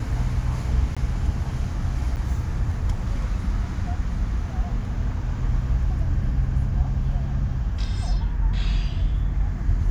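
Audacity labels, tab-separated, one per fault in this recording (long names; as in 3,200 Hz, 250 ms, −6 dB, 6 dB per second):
0.950000	0.970000	drop-out 16 ms
2.160000	2.170000	drop-out 8.7 ms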